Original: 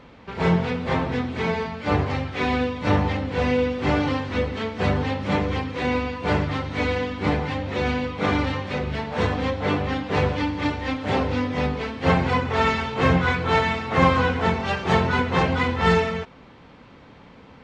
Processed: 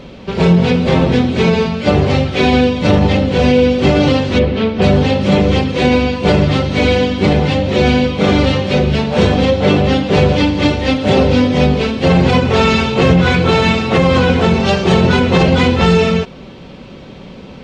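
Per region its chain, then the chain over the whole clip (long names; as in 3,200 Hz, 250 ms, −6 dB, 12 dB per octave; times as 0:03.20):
0:04.39–0:04.82: high-frequency loss of the air 190 metres + highs frequency-modulated by the lows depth 0.1 ms
whole clip: flat-topped bell 1,300 Hz −8 dB; comb filter 5.3 ms, depth 33%; boost into a limiter +15.5 dB; level −1 dB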